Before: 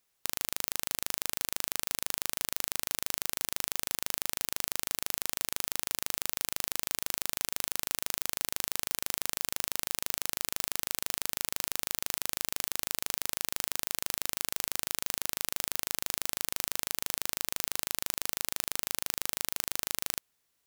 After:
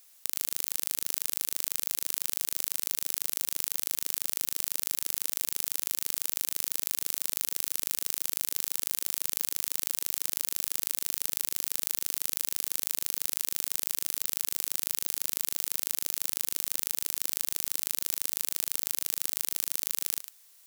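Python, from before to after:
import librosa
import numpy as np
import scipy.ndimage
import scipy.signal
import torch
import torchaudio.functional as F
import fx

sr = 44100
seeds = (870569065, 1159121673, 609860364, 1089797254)

p1 = scipy.signal.sosfilt(scipy.signal.butter(2, 380.0, 'highpass', fs=sr, output='sos'), x)
p2 = fx.high_shelf(p1, sr, hz=3500.0, db=12.0)
p3 = fx.over_compress(p2, sr, threshold_db=-29.0, ratio=-0.5)
y = p3 + fx.echo_single(p3, sr, ms=103, db=-12.0, dry=0)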